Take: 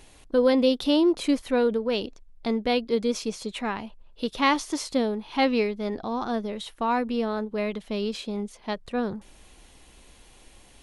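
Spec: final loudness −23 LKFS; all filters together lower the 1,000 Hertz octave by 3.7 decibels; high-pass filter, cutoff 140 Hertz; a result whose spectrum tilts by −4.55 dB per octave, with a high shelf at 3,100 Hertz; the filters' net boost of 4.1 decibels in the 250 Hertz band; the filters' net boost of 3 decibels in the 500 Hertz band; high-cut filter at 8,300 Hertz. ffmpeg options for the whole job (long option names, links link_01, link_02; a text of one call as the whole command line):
ffmpeg -i in.wav -af "highpass=140,lowpass=8300,equalizer=frequency=250:width_type=o:gain=4.5,equalizer=frequency=500:width_type=o:gain=3.5,equalizer=frequency=1000:width_type=o:gain=-6,highshelf=frequency=3100:gain=-4,volume=0.5dB" out.wav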